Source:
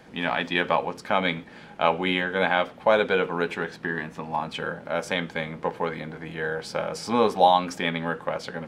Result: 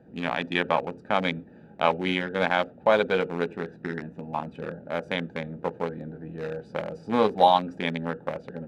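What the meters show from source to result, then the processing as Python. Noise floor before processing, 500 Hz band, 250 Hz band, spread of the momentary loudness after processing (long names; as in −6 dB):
−46 dBFS, −1.0 dB, −0.5 dB, 13 LU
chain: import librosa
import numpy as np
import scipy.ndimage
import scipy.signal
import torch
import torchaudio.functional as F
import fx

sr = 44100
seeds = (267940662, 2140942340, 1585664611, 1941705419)

y = fx.wiener(x, sr, points=41)
y = scipy.signal.sosfilt(scipy.signal.butter(2, 53.0, 'highpass', fs=sr, output='sos'), y)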